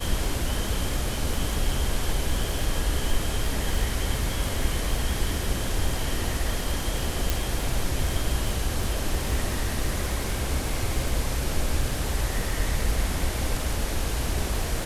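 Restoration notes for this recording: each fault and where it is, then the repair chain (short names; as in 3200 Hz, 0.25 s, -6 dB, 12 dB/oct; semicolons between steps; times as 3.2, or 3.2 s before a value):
crackle 58/s -30 dBFS
7.3 pop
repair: de-click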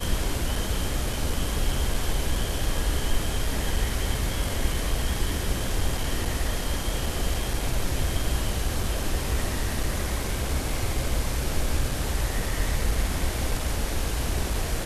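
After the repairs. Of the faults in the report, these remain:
7.3 pop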